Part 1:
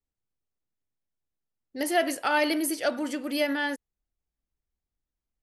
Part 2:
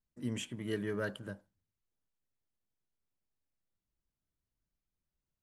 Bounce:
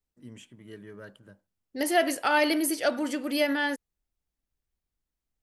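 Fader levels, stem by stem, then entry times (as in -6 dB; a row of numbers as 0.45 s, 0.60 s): +1.0 dB, -9.0 dB; 0.00 s, 0.00 s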